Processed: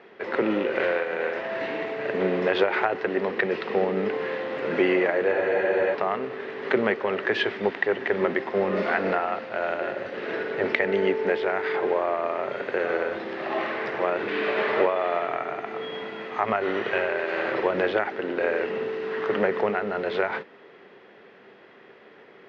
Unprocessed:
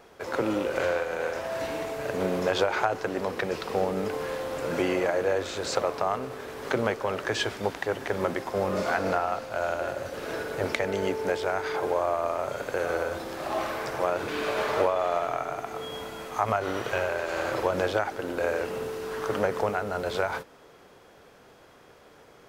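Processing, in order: cabinet simulation 170–3900 Hz, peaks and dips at 210 Hz +7 dB, 390 Hz +8 dB, 1.9 kHz +10 dB, 2.7 kHz +4 dB; spectral freeze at 5.35 s, 0.58 s

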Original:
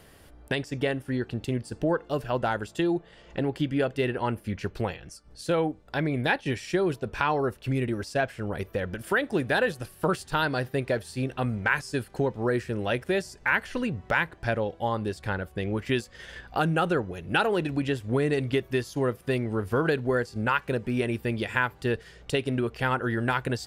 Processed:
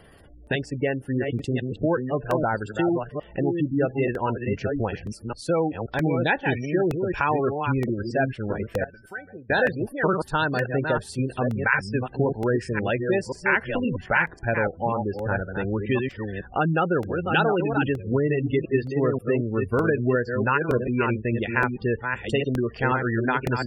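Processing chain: chunks repeated in reverse 533 ms, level -5 dB; spectral gate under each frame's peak -20 dB strong; 8.84–9.50 s: feedback comb 760 Hz, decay 0.2 s, harmonics all, mix 90%; crackling interface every 0.92 s, samples 64, repeat, from 0.47 s; trim +2.5 dB

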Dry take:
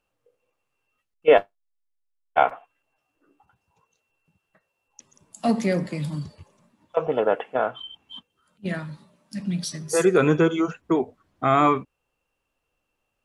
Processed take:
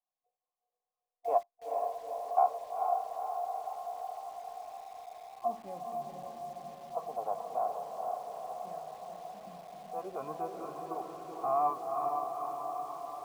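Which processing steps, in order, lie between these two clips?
harmony voices +7 st -15 dB; cascade formant filter a; band-stop 940 Hz, Q 16; echo that smears into a reverb 457 ms, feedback 69%, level -3 dB; in parallel at -3.5 dB: bit crusher 8-bit; on the sum: trim -6.5 dB

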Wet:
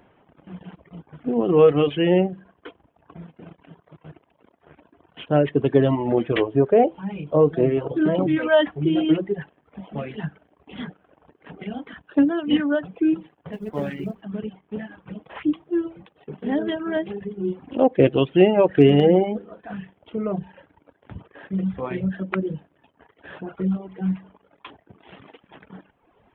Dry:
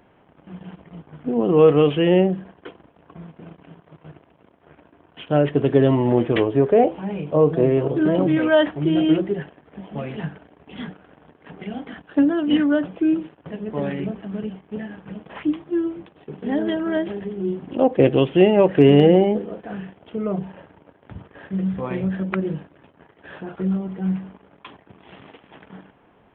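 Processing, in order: 13.53–14.22 s: companding laws mixed up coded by A; reverb removal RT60 1.1 s

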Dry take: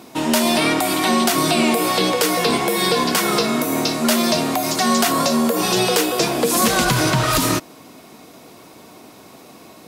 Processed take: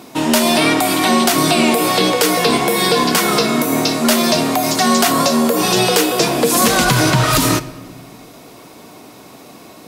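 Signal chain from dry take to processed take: simulated room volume 1100 m³, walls mixed, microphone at 0.34 m; trim +3.5 dB

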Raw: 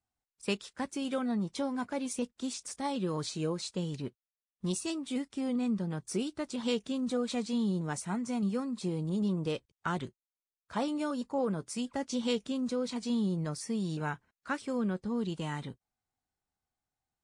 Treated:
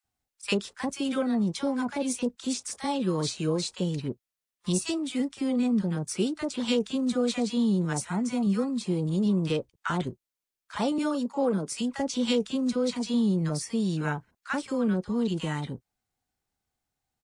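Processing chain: 10.94–11.67 s: steep high-pass 160 Hz; bands offset in time highs, lows 40 ms, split 980 Hz; trim +6 dB

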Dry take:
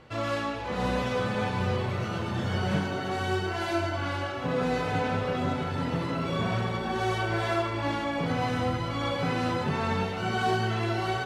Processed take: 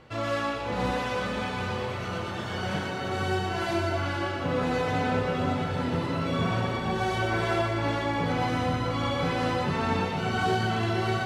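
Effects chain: 0.91–3.02 s: bass shelf 430 Hz -6.5 dB; two-band feedback delay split 480 Hz, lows 468 ms, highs 119 ms, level -6 dB

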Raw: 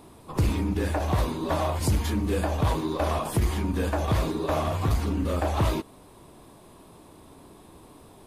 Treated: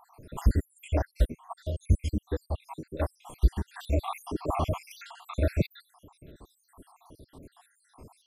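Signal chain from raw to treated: random holes in the spectrogram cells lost 77%; bass shelf 120 Hz +7.5 dB; 1.05–3.68 s: upward expansion 1.5:1, over -40 dBFS

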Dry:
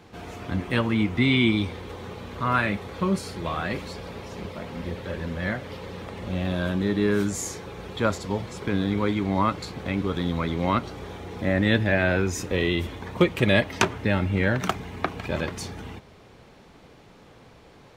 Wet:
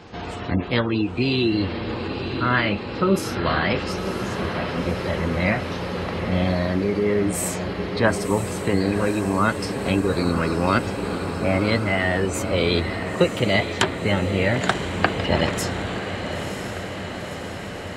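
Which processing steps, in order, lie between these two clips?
gain riding within 4 dB 0.5 s; formant shift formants +3 st; spectral gate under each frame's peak -30 dB strong; on a send: echo that smears into a reverb 991 ms, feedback 71%, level -8.5 dB; on the sum: trim +3 dB

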